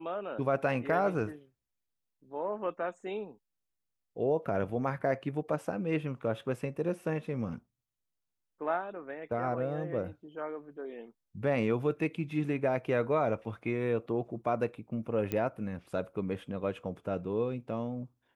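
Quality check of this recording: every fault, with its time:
0:15.32: click −19 dBFS

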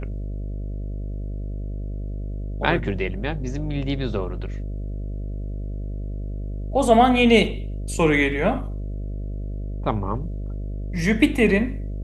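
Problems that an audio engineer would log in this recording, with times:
mains buzz 50 Hz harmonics 13 −29 dBFS

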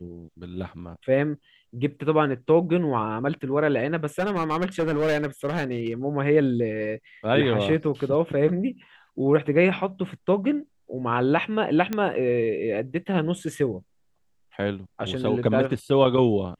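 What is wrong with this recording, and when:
0:04.19–0:05.92: clipping −19.5 dBFS
0:11.93: click −13 dBFS

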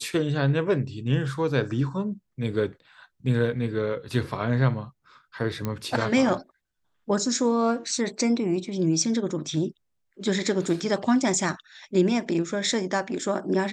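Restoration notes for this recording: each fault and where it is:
0:05.65: click −15 dBFS

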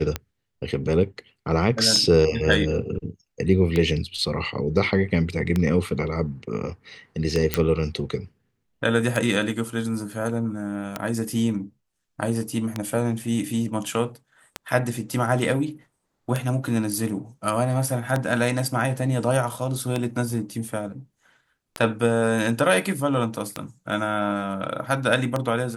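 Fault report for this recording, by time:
scratch tick 33 1/3 rpm −10 dBFS
0:07.54: click −4 dBFS

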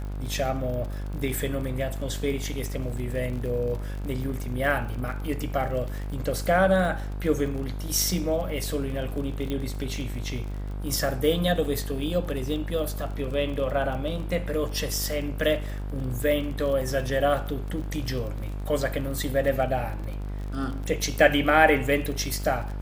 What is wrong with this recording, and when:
mains buzz 50 Hz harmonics 33 −32 dBFS
surface crackle 34 per second −33 dBFS
0:09.50: click −18 dBFS
0:11.65: drop-out 2.9 ms

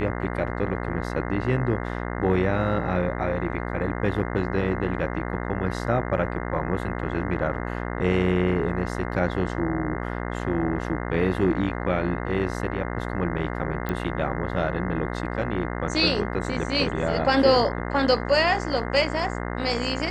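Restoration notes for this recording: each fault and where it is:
mains buzz 60 Hz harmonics 35 −30 dBFS
0:13.89: click −15 dBFS

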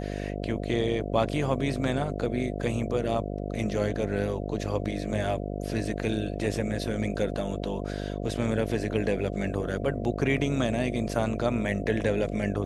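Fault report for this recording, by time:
mains buzz 50 Hz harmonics 14 −33 dBFS

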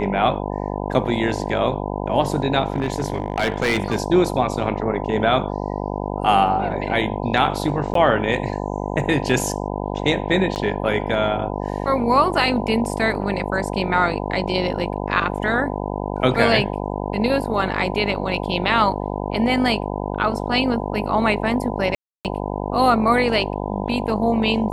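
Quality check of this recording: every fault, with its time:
mains buzz 50 Hz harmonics 20 −26 dBFS
0:02.72–0:03.98: clipping −15 dBFS
0:07.94–0:07.95: drop-out 13 ms
0:10.55–0:10.56: drop-out 9.5 ms
0:21.95–0:22.25: drop-out 298 ms

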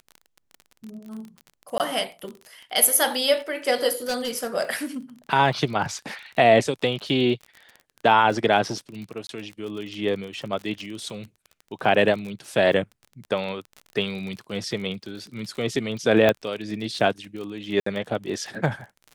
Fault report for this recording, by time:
surface crackle 34 per second −32 dBFS
0:01.78–0:01.80: drop-out 18 ms
0:04.07–0:04.56: clipping −22 dBFS
0:09.27–0:09.29: drop-out 22 ms
0:16.29: click −7 dBFS
0:17.80–0:17.86: drop-out 64 ms

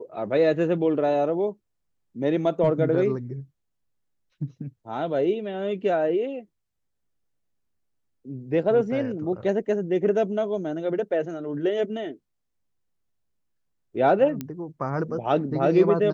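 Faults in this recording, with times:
0:14.41: click −17 dBFS

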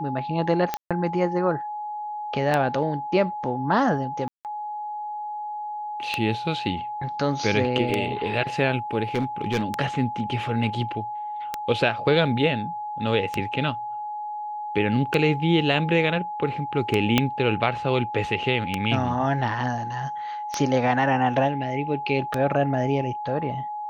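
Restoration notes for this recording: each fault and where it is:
scratch tick 33 1/3 rpm −9 dBFS
whistle 840 Hz −29 dBFS
0:00.77–0:00.91: drop-out 136 ms
0:04.28–0:04.45: drop-out 168 ms
0:09.14–0:09.63: clipping −19 dBFS
0:17.18: click −4 dBFS

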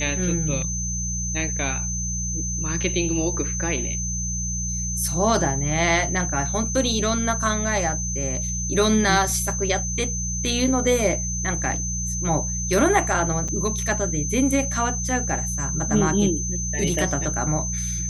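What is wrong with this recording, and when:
mains hum 60 Hz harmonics 3 −29 dBFS
whistle 6,200 Hz −27 dBFS
0:13.48–0:13.49: drop-out 5.3 ms

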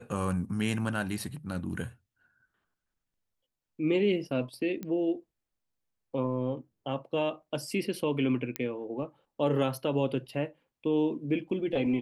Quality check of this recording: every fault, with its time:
0:04.83: click −24 dBFS
0:08.56: click −15 dBFS

